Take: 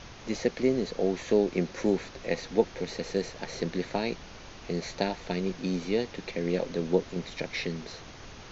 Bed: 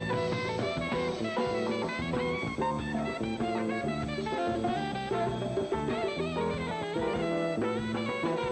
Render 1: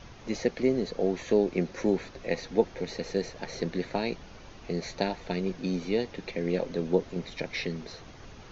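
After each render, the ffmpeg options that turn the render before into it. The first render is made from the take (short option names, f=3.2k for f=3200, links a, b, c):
-af "afftdn=nr=6:nf=-47"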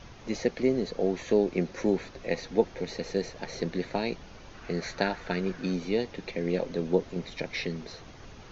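-filter_complex "[0:a]asettb=1/sr,asplit=3[a][b][c];[a]atrim=end=4.544[d];[b]atrim=start=4.54:end=5.74,asetpts=PTS-STARTPTS,afade=t=in:d=0.004:c=qsin,afade=t=out:st=1.196:d=0.004:c=qsin,equalizer=f=1.5k:t=o:w=0.71:g=10[e];[c]atrim=start=5.736[f];[d][e]acrossfade=d=0.004:c1=hsin:c2=qsin[g];[g][f]acrossfade=d=0.004:c1=qsin:c2=hsin"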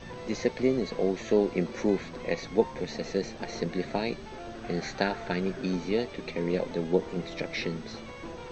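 -filter_complex "[1:a]volume=-11.5dB[a];[0:a][a]amix=inputs=2:normalize=0"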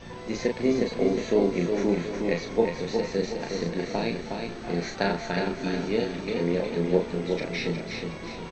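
-filter_complex "[0:a]asplit=2[a][b];[b]adelay=35,volume=-4dB[c];[a][c]amix=inputs=2:normalize=0,aecho=1:1:363|726|1089|1452|1815:0.562|0.247|0.109|0.0479|0.0211"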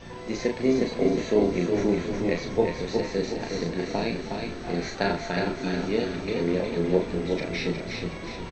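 -filter_complex "[0:a]asplit=2[a][b];[b]adelay=38,volume=-11.5dB[c];[a][c]amix=inputs=2:normalize=0,asplit=8[d][e][f][g][h][i][j][k];[e]adelay=368,afreqshift=-94,volume=-13dB[l];[f]adelay=736,afreqshift=-188,volume=-17.2dB[m];[g]adelay=1104,afreqshift=-282,volume=-21.3dB[n];[h]adelay=1472,afreqshift=-376,volume=-25.5dB[o];[i]adelay=1840,afreqshift=-470,volume=-29.6dB[p];[j]adelay=2208,afreqshift=-564,volume=-33.8dB[q];[k]adelay=2576,afreqshift=-658,volume=-37.9dB[r];[d][l][m][n][o][p][q][r]amix=inputs=8:normalize=0"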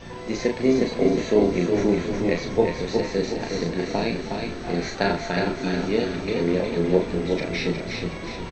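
-af "volume=3dB"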